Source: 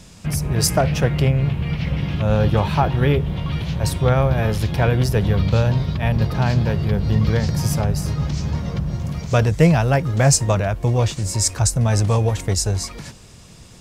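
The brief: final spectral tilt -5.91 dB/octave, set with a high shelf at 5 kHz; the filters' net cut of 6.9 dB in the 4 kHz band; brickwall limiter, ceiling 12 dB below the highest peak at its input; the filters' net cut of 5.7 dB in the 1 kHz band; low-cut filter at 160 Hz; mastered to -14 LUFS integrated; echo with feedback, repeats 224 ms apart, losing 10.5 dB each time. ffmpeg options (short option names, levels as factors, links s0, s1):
-af "highpass=160,equalizer=f=1000:t=o:g=-8,equalizer=f=4000:t=o:g=-6,highshelf=f=5000:g=-5.5,alimiter=limit=0.168:level=0:latency=1,aecho=1:1:224|448|672:0.299|0.0896|0.0269,volume=3.76"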